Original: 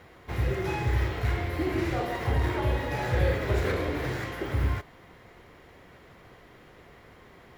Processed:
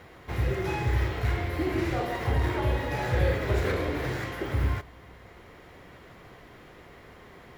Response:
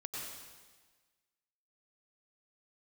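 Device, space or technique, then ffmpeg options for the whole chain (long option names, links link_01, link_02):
ducked reverb: -filter_complex "[0:a]asplit=3[link_01][link_02][link_03];[1:a]atrim=start_sample=2205[link_04];[link_02][link_04]afir=irnorm=-1:irlink=0[link_05];[link_03]apad=whole_len=334257[link_06];[link_05][link_06]sidechaincompress=threshold=-47dB:ratio=8:attack=16:release=508,volume=-4.5dB[link_07];[link_01][link_07]amix=inputs=2:normalize=0"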